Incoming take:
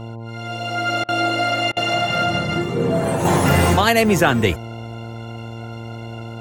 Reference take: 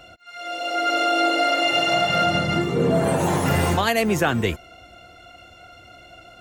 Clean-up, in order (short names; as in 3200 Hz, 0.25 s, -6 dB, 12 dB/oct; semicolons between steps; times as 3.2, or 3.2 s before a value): de-hum 114.4 Hz, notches 9; interpolate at 1.04/1.72, 45 ms; gain correction -5 dB, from 3.25